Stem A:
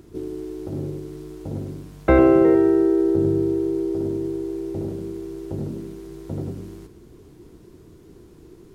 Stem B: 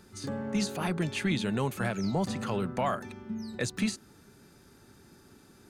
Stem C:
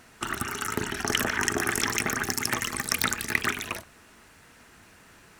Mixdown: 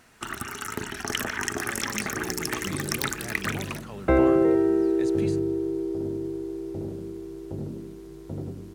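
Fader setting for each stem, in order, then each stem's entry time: −5.0, −9.0, −3.0 decibels; 2.00, 1.40, 0.00 seconds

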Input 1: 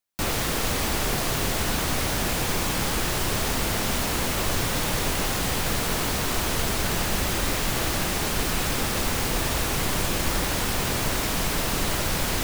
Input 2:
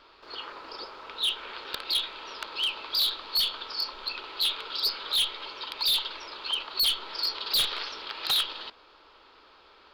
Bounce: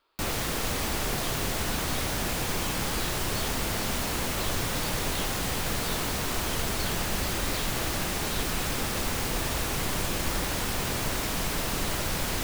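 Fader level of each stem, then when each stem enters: −4.0, −17.0 decibels; 0.00, 0.00 seconds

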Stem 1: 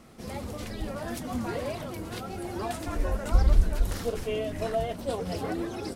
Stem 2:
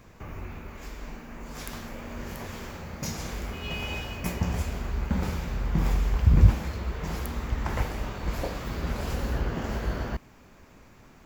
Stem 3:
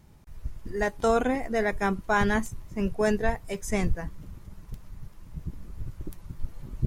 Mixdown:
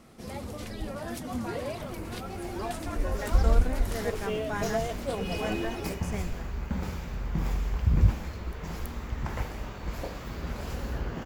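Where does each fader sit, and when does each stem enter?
−1.5, −4.5, −10.5 decibels; 0.00, 1.60, 2.40 seconds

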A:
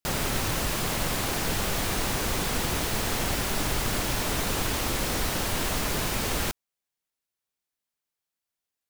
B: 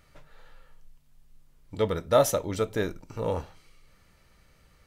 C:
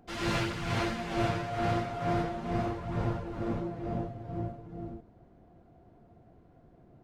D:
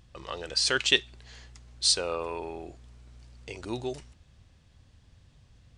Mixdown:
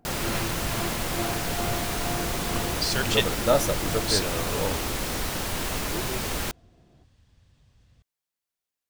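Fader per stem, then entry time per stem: −1.5, −1.0, −2.0, −2.5 decibels; 0.00, 1.35, 0.00, 2.25 seconds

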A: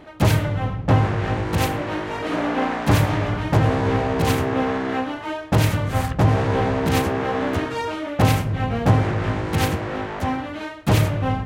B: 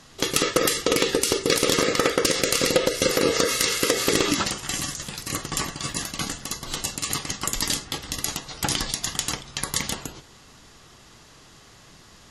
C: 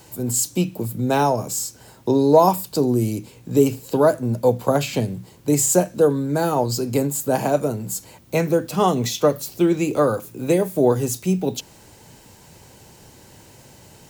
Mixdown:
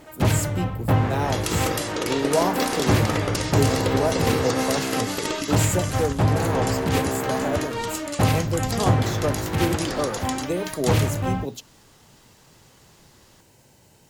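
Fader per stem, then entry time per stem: −3.0, −7.0, −8.5 decibels; 0.00, 1.10, 0.00 seconds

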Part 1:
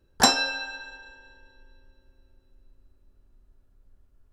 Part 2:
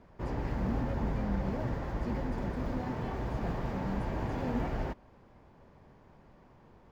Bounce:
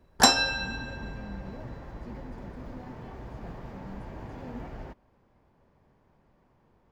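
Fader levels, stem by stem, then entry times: 0.0, −7.0 decibels; 0.00, 0.00 seconds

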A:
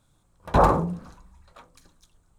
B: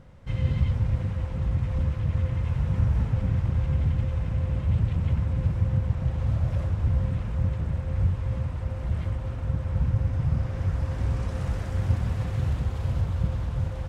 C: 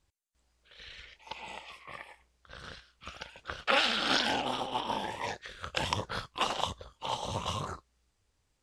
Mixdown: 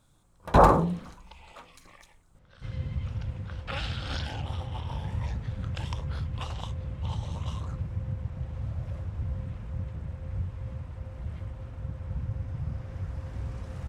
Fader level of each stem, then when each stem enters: +0.5, −9.0, −10.0 decibels; 0.00, 2.35, 0.00 seconds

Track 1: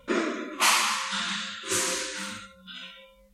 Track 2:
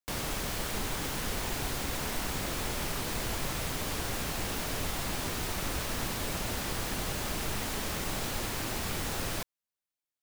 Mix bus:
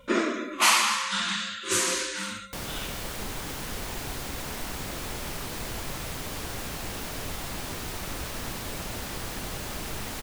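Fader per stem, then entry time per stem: +1.5, −1.0 decibels; 0.00, 2.45 seconds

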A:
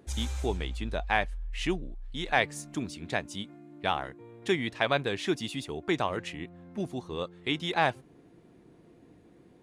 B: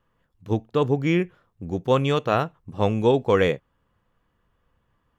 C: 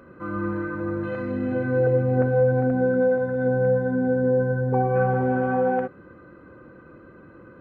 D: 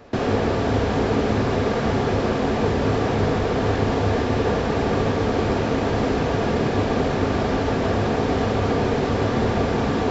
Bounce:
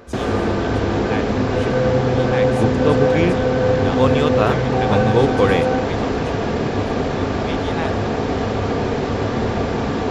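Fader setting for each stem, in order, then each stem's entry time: −2.5, +2.0, +1.5, +0.5 decibels; 0.00, 2.10, 0.00, 0.00 seconds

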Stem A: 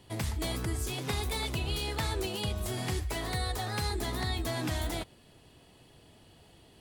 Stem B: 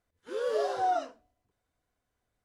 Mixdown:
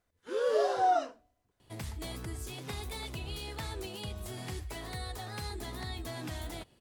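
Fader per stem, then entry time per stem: −7.0, +1.5 decibels; 1.60, 0.00 seconds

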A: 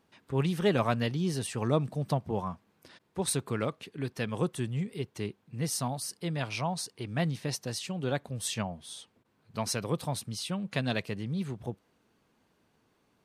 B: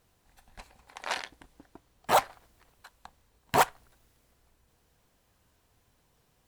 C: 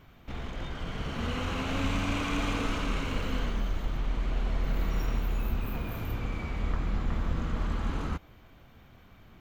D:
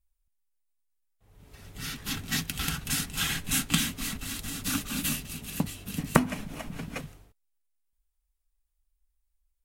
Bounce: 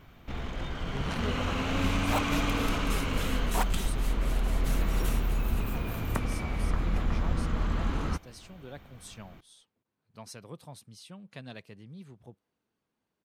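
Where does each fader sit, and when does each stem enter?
−13.5, −9.0, +1.5, −12.0 decibels; 0.60, 0.00, 0.00, 0.00 seconds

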